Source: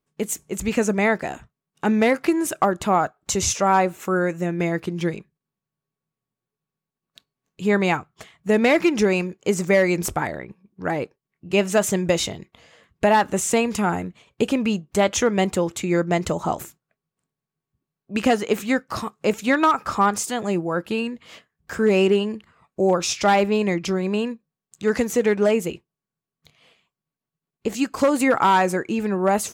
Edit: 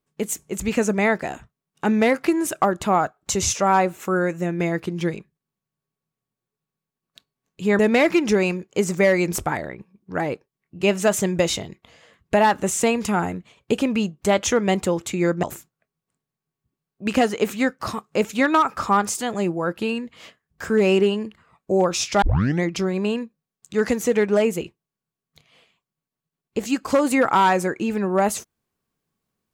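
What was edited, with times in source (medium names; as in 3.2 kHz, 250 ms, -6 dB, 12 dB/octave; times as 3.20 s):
7.79–8.49 s: delete
16.13–16.52 s: delete
23.31 s: tape start 0.41 s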